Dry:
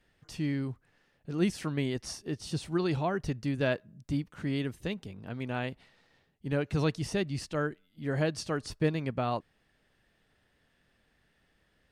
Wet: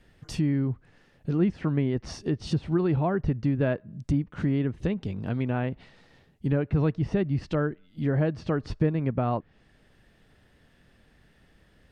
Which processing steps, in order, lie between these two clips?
treble cut that deepens with the level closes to 2,000 Hz, closed at −30 dBFS
low-shelf EQ 420 Hz +7 dB
downward compressor 2 to 1, threshold −32 dBFS, peak gain reduction 8.5 dB
level +6.5 dB

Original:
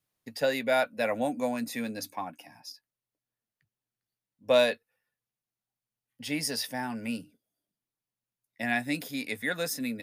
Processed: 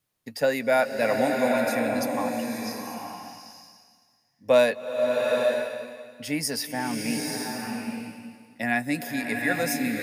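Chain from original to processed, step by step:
dynamic equaliser 3,500 Hz, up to −8 dB, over −50 dBFS, Q 2
slow-attack reverb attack 860 ms, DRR 1 dB
level +4 dB

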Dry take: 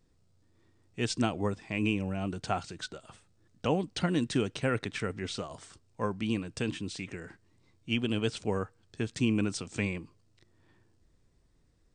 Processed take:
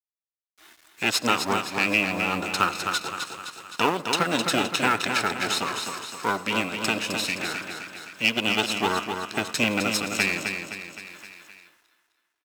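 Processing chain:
lower of the sound and its delayed copy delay 0.73 ms
meter weighting curve A
noise reduction from a noise print of the clip's start 17 dB
bass and treble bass −3 dB, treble +2 dB
in parallel at +2.5 dB: downward compressor, threshold −42 dBFS, peak gain reduction 15 dB
on the sum: log-companded quantiser 6 bits
repeating echo 249 ms, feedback 45%, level −6 dB
on a send at −18.5 dB: convolution reverb RT60 0.40 s, pre-delay 75 ms
on the sum: wrong playback speed 25 fps video run at 24 fps
one half of a high-frequency compander encoder only
level +8 dB

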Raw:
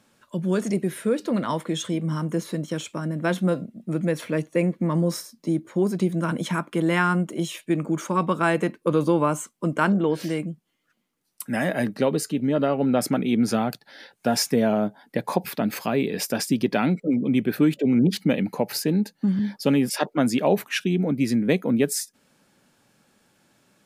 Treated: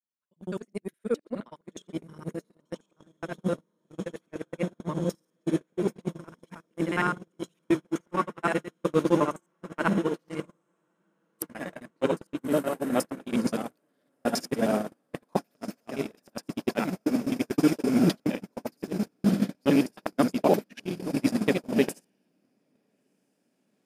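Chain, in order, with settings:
reversed piece by piece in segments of 52 ms
camcorder AGC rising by 14 dB per second
high-pass filter 170 Hz 12 dB per octave
on a send: feedback delay with all-pass diffusion 1,315 ms, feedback 76%, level −8.5 dB
on the sum: noise gate −19 dBFS, range −44 dB

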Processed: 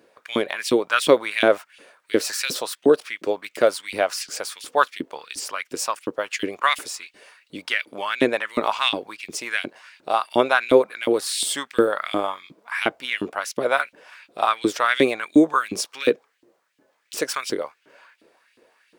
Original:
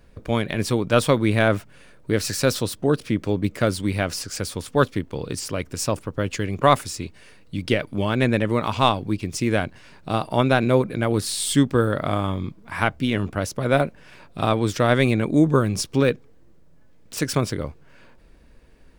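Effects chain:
auto-filter high-pass saw up 2.8 Hz 280–3,300 Hz

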